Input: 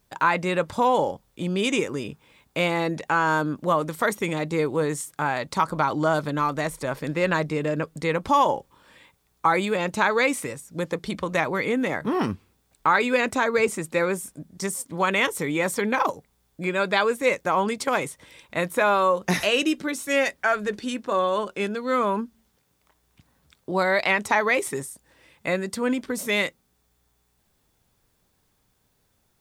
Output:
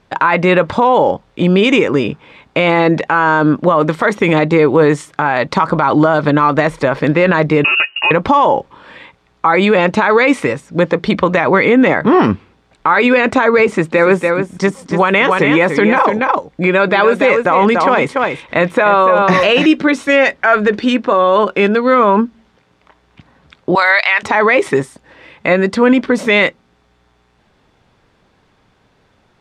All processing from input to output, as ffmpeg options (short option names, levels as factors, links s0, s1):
-filter_complex "[0:a]asettb=1/sr,asplit=3[s0][s1][s2];[s0]atrim=end=7.644[s3];[s1]atrim=start=7.64:end=8.11,asetpts=PTS-STARTPTS,afade=t=in:d=0.004:c=qsin,afade=t=out:st=0.466:d=0.004:c=qsin,aecho=1:1:4.2:0.89,atrim=end_sample=20727,acompressor=threshold=0.0562:ratio=6:attack=3.2:release=140:knee=1:detection=peak,lowpass=f=2600:t=q:w=0.5098,lowpass=f=2600:t=q:w=0.6013,lowpass=f=2600:t=q:w=0.9,lowpass=f=2600:t=q:w=2.563,afreqshift=-3000[s4];[s2]atrim=start=8.106[s5];[s3][s4]acrossfade=d=0.004:c1=hsin:c2=qsin[s6];[s6][s5]acrossfade=d=0.004:c1=qsin:c2=hsin,asettb=1/sr,asplit=3[s7][s8][s9];[s7]atrim=end=13.664[s10];[s8]atrim=start=13.66:end=19.66,asetpts=PTS-STARTPTS,afade=t=in:d=0.004:c=qsin,afade=t=out:st=5.996:d=0.004:c=qsin,deesser=0.6,aecho=1:1:287:0.376,atrim=end_sample=264600[s11];[s9]atrim=start=19.656[s12];[s10][s11]acrossfade=d=0.004:c1=hsin:c2=qsin[s13];[s13][s12]acrossfade=d=0.004:c1=qsin:c2=hsin,asettb=1/sr,asplit=3[s14][s15][s16];[s14]atrim=end=23.754[s17];[s15]atrim=start=23.75:end=24.23,asetpts=PTS-STARTPTS,afade=t=in:d=0.004:c=qsin,afade=t=out:st=0.476:d=0.004:c=qsin,highpass=690,tiltshelf=f=940:g=-8[s18];[s16]atrim=start=24.226[s19];[s17][s18]acrossfade=d=0.004:c1=hsin:c2=qsin[s20];[s20][s19]acrossfade=d=0.004:c1=qsin:c2=hsin,lowpass=3000,lowshelf=f=110:g=-8.5,alimiter=level_in=8.41:limit=0.891:release=50:level=0:latency=1,volume=0.891"